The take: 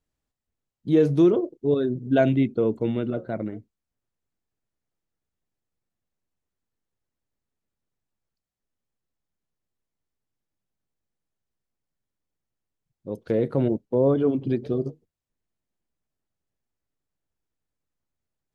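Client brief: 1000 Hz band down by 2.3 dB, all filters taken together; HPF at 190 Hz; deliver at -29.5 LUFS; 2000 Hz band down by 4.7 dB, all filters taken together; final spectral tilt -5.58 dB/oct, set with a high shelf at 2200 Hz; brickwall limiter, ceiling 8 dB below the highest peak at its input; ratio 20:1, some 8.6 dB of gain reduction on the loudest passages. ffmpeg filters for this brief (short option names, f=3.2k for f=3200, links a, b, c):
-af "highpass=190,equalizer=f=1k:t=o:g=-3.5,equalizer=f=2k:t=o:g=-8,highshelf=f=2.2k:g=5,acompressor=threshold=-22dB:ratio=20,volume=3.5dB,alimiter=limit=-20dB:level=0:latency=1"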